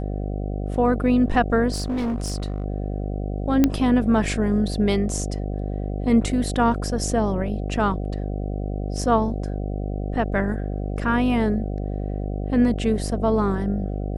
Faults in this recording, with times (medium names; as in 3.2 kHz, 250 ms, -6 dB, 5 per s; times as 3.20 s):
buzz 50 Hz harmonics 15 -27 dBFS
1.74–2.64 s: clipped -21.5 dBFS
3.64 s: pop -5 dBFS